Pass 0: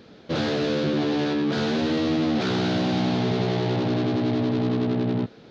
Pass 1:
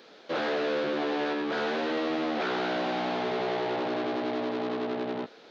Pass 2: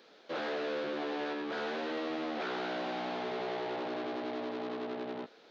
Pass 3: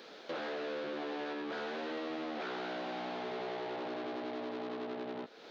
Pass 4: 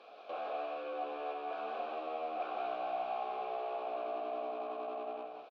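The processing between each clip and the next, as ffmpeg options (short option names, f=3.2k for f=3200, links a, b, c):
-filter_complex "[0:a]acrossover=split=2700[a][b];[b]acompressor=threshold=-48dB:ratio=4:attack=1:release=60[c];[a][c]amix=inputs=2:normalize=0,highpass=500,volume=1dB"
-af "lowshelf=f=77:g=-12,volume=-6.5dB"
-af "acompressor=threshold=-50dB:ratio=2.5,volume=7.5dB"
-filter_complex "[0:a]asplit=3[a][b][c];[a]bandpass=f=730:t=q:w=8,volume=0dB[d];[b]bandpass=f=1.09k:t=q:w=8,volume=-6dB[e];[c]bandpass=f=2.44k:t=q:w=8,volume=-9dB[f];[d][e][f]amix=inputs=3:normalize=0,aeval=exprs='0.0141*(cos(1*acos(clip(val(0)/0.0141,-1,1)))-cos(1*PI/2))+0.000112*(cos(2*acos(clip(val(0)/0.0141,-1,1)))-cos(2*PI/2))':c=same,aecho=1:1:162|185:0.473|0.473,volume=8.5dB"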